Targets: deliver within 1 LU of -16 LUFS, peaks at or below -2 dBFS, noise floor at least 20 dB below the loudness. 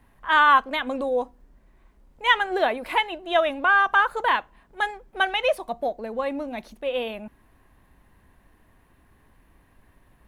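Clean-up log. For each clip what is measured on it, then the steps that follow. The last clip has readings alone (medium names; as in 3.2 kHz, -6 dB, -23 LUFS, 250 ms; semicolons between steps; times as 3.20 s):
loudness -23.0 LUFS; peak level -4.5 dBFS; loudness target -16.0 LUFS
-> trim +7 dB; peak limiter -2 dBFS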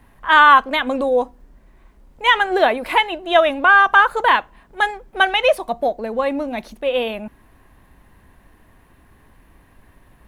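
loudness -16.5 LUFS; peak level -2.0 dBFS; noise floor -53 dBFS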